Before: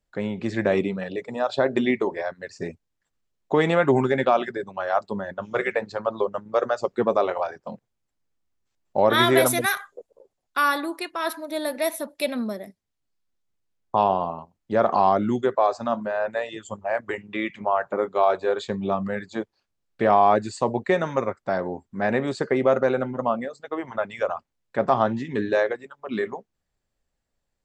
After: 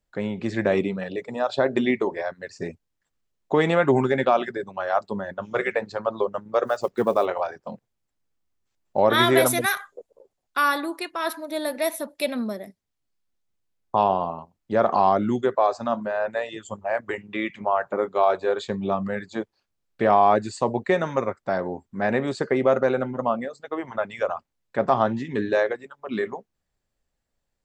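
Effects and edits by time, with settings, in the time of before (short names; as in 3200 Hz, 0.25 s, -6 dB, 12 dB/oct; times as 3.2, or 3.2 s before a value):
6.65–7.27 block floating point 7-bit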